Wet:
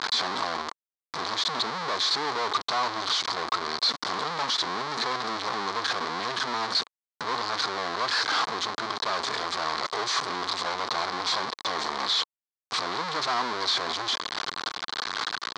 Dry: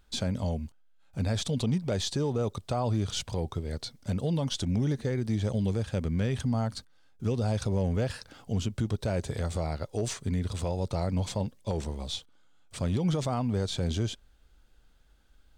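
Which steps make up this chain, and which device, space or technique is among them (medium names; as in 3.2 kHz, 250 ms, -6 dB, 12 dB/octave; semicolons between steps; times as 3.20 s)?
home computer beeper (one-bit comparator; cabinet simulation 540–5200 Hz, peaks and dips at 560 Hz -8 dB, 1.1 kHz +8 dB, 2.7 kHz -8 dB, 4.2 kHz +6 dB); trim +7 dB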